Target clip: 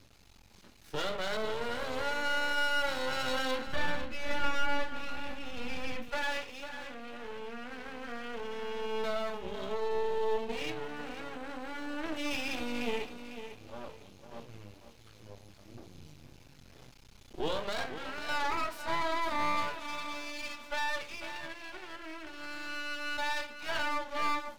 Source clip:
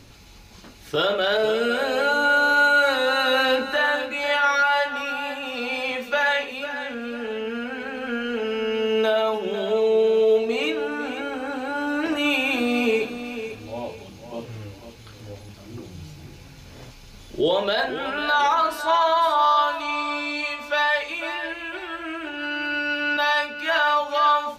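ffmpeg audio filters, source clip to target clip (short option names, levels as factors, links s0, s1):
-filter_complex "[0:a]aeval=exprs='max(val(0),0)':c=same,asettb=1/sr,asplit=3[s0][s1][s2];[s0]atrim=end=3.674[s3];[s1]atrim=start=3.67:end=6.09,asetpts=PTS-STARTPTS,afade=t=in:d=0.004:c=qsin,afade=t=out:st=2.416:d=0.004:c=qsin,bass=f=250:g=11,treble=f=4000:g=-4[s4];[s2]atrim=start=6.086[s5];[s3][s4]acrossfade=d=0.004:c1=hsin:c2=qsin[s6];[s6][s5]acrossfade=d=0.004:c1=qsin:c2=hsin,volume=0.376"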